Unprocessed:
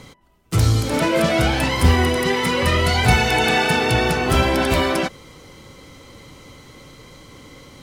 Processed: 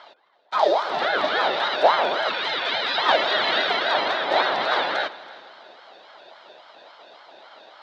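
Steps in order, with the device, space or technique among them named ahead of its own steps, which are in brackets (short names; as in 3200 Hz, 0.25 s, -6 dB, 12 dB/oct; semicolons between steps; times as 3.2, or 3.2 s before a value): 2.29–2.98 weighting filter A; voice changer toy (ring modulator with a swept carrier 800 Hz, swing 45%, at 3.6 Hz; speaker cabinet 500–4100 Hz, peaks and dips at 630 Hz +5 dB, 1100 Hz -5 dB, 2600 Hz -6 dB, 3800 Hz +7 dB); multi-head echo 0.163 s, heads first and second, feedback 47%, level -22 dB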